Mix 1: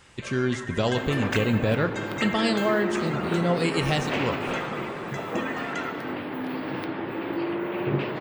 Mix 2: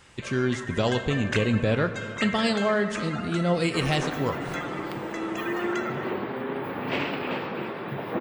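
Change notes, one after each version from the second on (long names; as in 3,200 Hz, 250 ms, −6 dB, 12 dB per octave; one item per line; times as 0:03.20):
second sound: entry +2.80 s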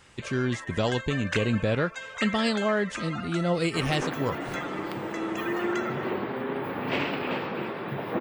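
reverb: off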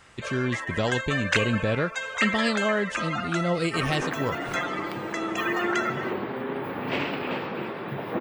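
first sound +7.0 dB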